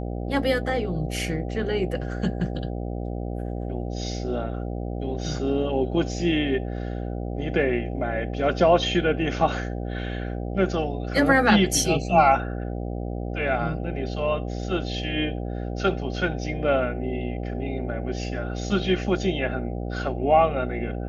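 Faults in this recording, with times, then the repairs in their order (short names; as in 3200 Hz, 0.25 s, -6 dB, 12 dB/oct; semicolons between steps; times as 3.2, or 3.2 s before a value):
buzz 60 Hz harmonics 13 -30 dBFS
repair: de-hum 60 Hz, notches 13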